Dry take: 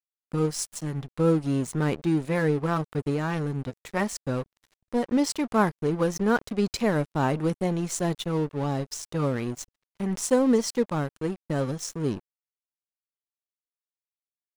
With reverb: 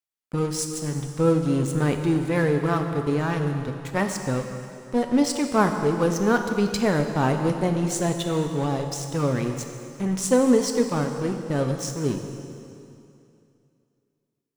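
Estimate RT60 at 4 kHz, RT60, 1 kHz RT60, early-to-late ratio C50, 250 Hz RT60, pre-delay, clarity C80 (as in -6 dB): 2.4 s, 2.6 s, 2.6 s, 6.5 dB, 2.7 s, 6 ms, 7.0 dB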